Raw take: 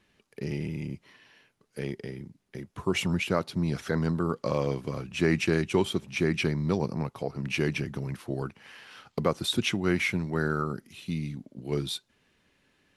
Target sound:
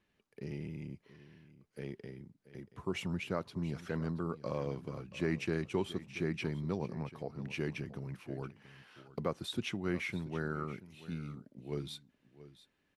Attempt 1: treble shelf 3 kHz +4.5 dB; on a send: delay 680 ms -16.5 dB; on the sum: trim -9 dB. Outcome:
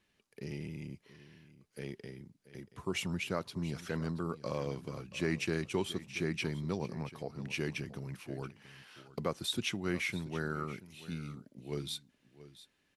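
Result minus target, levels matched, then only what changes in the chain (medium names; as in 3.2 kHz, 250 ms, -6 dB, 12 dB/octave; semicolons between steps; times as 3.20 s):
8 kHz band +7.5 dB
change: treble shelf 3 kHz -5.5 dB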